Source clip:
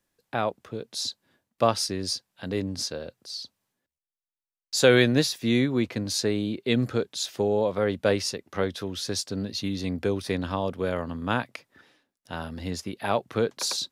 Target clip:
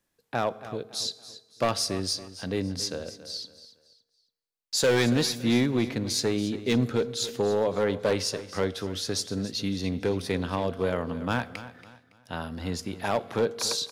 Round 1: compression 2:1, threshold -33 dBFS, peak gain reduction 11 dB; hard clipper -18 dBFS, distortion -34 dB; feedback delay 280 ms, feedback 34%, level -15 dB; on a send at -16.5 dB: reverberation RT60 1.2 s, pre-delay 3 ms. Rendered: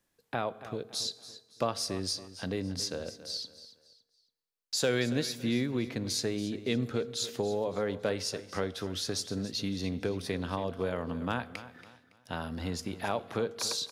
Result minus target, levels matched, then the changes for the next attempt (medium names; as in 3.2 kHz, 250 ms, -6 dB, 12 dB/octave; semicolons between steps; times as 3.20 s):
compression: peak gain reduction +11 dB
remove: compression 2:1, threshold -33 dBFS, peak gain reduction 11 dB